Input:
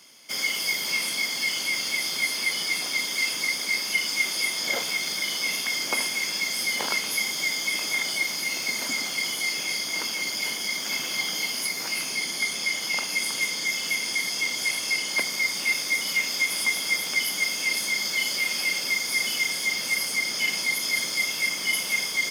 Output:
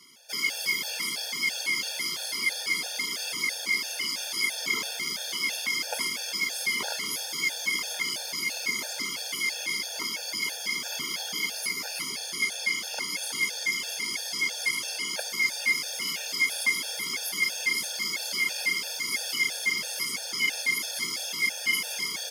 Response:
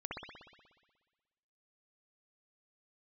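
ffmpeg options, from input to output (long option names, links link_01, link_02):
-af "afftfilt=real='re*gt(sin(2*PI*3*pts/sr)*(1-2*mod(floor(b*sr/1024/470),2)),0)':imag='im*gt(sin(2*PI*3*pts/sr)*(1-2*mod(floor(b*sr/1024/470),2)),0)':win_size=1024:overlap=0.75"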